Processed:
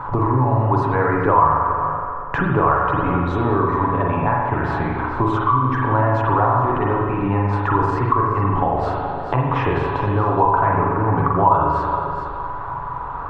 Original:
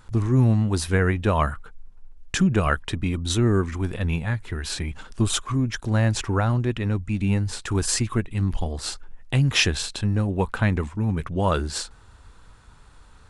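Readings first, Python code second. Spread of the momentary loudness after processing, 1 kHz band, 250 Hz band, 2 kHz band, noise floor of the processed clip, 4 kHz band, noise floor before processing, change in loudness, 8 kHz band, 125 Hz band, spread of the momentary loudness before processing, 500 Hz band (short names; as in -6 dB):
7 LU, +16.0 dB, +2.0 dB, +3.5 dB, -28 dBFS, under -10 dB, -50 dBFS, +5.0 dB, under -25 dB, +2.0 dB, 9 LU, +7.5 dB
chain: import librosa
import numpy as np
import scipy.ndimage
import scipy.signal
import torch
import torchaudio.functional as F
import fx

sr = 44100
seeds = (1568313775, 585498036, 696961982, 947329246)

p1 = fx.peak_eq(x, sr, hz=210.0, db=-14.0, octaves=0.39)
p2 = p1 + 0.41 * np.pad(p1, (int(7.1 * sr / 1000.0), 0))[:len(p1)]
p3 = fx.hpss(p2, sr, part='percussive', gain_db=7)
p4 = fx.low_shelf(p3, sr, hz=92.0, db=-6.5)
p5 = fx.over_compress(p4, sr, threshold_db=-24.0, ratio=-1.0)
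p6 = p4 + (p5 * 10.0 ** (-2.0 / 20.0))
p7 = fx.lowpass_res(p6, sr, hz=1000.0, q=4.9)
p8 = p7 + fx.echo_single(p7, sr, ms=422, db=-14.5, dry=0)
p9 = fx.rev_spring(p8, sr, rt60_s=1.3, pass_ms=(40, 46), chirp_ms=70, drr_db=-2.5)
p10 = fx.band_squash(p9, sr, depth_pct=70)
y = p10 * 10.0 ** (-6.0 / 20.0)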